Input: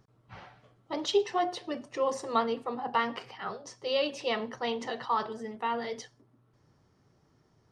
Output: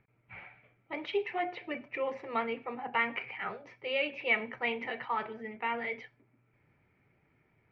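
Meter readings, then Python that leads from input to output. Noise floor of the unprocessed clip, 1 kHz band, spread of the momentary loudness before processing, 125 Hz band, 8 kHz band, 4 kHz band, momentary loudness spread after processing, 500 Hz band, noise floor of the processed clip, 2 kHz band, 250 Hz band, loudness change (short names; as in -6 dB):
-68 dBFS, -4.5 dB, 11 LU, -4.5 dB, under -25 dB, -6.0 dB, 13 LU, -5.0 dB, -72 dBFS, +6.0 dB, -5.0 dB, -2.5 dB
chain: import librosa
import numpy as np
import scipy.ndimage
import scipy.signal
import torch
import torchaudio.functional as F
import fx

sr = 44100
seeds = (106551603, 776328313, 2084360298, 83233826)

p1 = fx.rider(x, sr, range_db=4, speed_s=0.5)
p2 = x + F.gain(torch.from_numpy(p1), -1.0).numpy()
p3 = fx.ladder_lowpass(p2, sr, hz=2400.0, resonance_pct=85)
p4 = fx.notch(p3, sr, hz=1100.0, q=9.2)
y = F.gain(torch.from_numpy(p4), 2.5).numpy()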